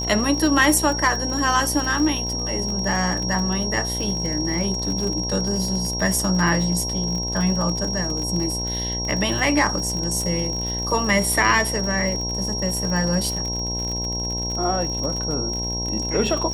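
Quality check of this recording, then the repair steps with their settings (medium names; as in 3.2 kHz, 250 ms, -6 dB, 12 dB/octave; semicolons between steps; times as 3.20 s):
buzz 60 Hz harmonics 17 -29 dBFS
crackle 54 per s -26 dBFS
whine 5.6 kHz -26 dBFS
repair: de-click; de-hum 60 Hz, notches 17; band-stop 5.6 kHz, Q 30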